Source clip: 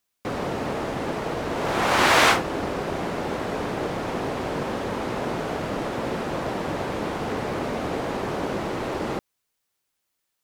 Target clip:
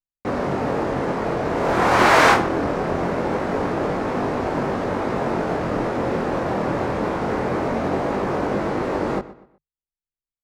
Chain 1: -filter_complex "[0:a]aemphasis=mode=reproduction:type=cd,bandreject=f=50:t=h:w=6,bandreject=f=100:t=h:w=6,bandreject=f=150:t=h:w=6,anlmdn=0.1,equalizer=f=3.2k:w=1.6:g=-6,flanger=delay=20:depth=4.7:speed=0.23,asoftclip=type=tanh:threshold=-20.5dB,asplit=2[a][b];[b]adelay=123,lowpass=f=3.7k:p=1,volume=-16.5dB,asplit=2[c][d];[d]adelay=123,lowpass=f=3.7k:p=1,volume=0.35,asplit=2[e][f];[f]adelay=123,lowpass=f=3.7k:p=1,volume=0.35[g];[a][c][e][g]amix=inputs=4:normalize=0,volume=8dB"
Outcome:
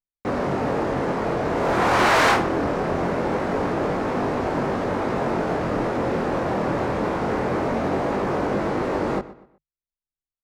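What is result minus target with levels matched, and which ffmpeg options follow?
soft clip: distortion +17 dB
-filter_complex "[0:a]aemphasis=mode=reproduction:type=cd,bandreject=f=50:t=h:w=6,bandreject=f=100:t=h:w=6,bandreject=f=150:t=h:w=6,anlmdn=0.1,equalizer=f=3.2k:w=1.6:g=-6,flanger=delay=20:depth=4.7:speed=0.23,asoftclip=type=tanh:threshold=-8.5dB,asplit=2[a][b];[b]adelay=123,lowpass=f=3.7k:p=1,volume=-16.5dB,asplit=2[c][d];[d]adelay=123,lowpass=f=3.7k:p=1,volume=0.35,asplit=2[e][f];[f]adelay=123,lowpass=f=3.7k:p=1,volume=0.35[g];[a][c][e][g]amix=inputs=4:normalize=0,volume=8dB"

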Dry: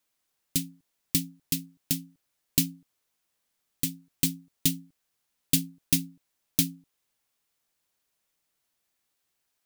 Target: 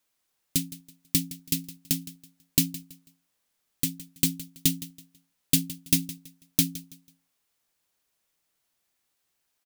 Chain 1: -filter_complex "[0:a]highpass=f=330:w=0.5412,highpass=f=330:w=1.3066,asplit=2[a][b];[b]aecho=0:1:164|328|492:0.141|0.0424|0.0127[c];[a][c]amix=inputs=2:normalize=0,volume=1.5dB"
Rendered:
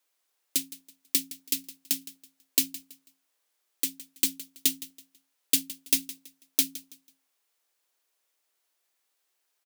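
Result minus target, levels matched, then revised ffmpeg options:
250 Hz band -8.5 dB
-filter_complex "[0:a]asplit=2[a][b];[b]aecho=0:1:164|328|492:0.141|0.0424|0.0127[c];[a][c]amix=inputs=2:normalize=0,volume=1.5dB"

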